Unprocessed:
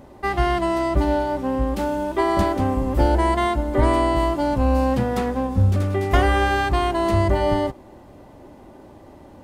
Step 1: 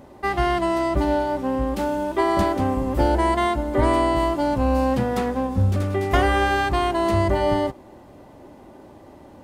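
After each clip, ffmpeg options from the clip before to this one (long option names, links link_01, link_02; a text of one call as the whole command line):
ffmpeg -i in.wav -af "lowshelf=frequency=74:gain=-6.5" out.wav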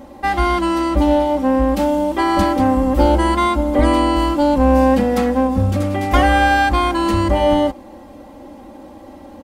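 ffmpeg -i in.wav -filter_complex "[0:a]aecho=1:1:3.7:0.95,asplit=2[link_01][link_02];[link_02]asoftclip=type=tanh:threshold=-18dB,volume=-8dB[link_03];[link_01][link_03]amix=inputs=2:normalize=0,volume=1dB" out.wav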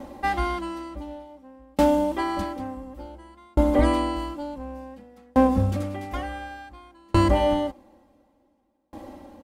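ffmpeg -i in.wav -af "aeval=exprs='val(0)*pow(10,-38*if(lt(mod(0.56*n/s,1),2*abs(0.56)/1000),1-mod(0.56*n/s,1)/(2*abs(0.56)/1000),(mod(0.56*n/s,1)-2*abs(0.56)/1000)/(1-2*abs(0.56)/1000))/20)':channel_layout=same" out.wav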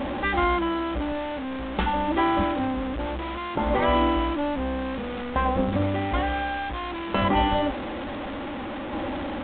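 ffmpeg -i in.wav -af "aeval=exprs='val(0)+0.5*0.0355*sgn(val(0))':channel_layout=same,afftfilt=real='re*lt(hypot(re,im),0.631)':imag='im*lt(hypot(re,im),0.631)':win_size=1024:overlap=0.75,volume=2.5dB" -ar 8000 -c:a pcm_mulaw out.wav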